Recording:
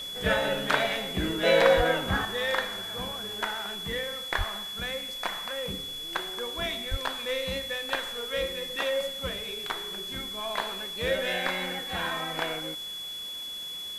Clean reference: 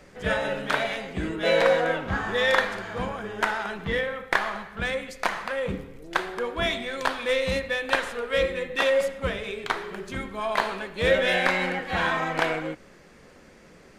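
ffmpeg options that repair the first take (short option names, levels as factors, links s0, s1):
-filter_complex "[0:a]bandreject=f=3400:w=30,asplit=3[s0][s1][s2];[s0]afade=t=out:st=1.76:d=0.02[s3];[s1]highpass=f=140:w=0.5412,highpass=f=140:w=1.3066,afade=t=in:st=1.76:d=0.02,afade=t=out:st=1.88:d=0.02[s4];[s2]afade=t=in:st=1.88:d=0.02[s5];[s3][s4][s5]amix=inputs=3:normalize=0,asplit=3[s6][s7][s8];[s6]afade=t=out:st=4.37:d=0.02[s9];[s7]highpass=f=140:w=0.5412,highpass=f=140:w=1.3066,afade=t=in:st=4.37:d=0.02,afade=t=out:st=4.49:d=0.02[s10];[s8]afade=t=in:st=4.49:d=0.02[s11];[s9][s10][s11]amix=inputs=3:normalize=0,asplit=3[s12][s13][s14];[s12]afade=t=out:st=6.9:d=0.02[s15];[s13]highpass=f=140:w=0.5412,highpass=f=140:w=1.3066,afade=t=in:st=6.9:d=0.02,afade=t=out:st=7.02:d=0.02[s16];[s14]afade=t=in:st=7.02:d=0.02[s17];[s15][s16][s17]amix=inputs=3:normalize=0,afwtdn=0.0045,asetnsamples=n=441:p=0,asendcmd='2.25 volume volume 7dB',volume=1"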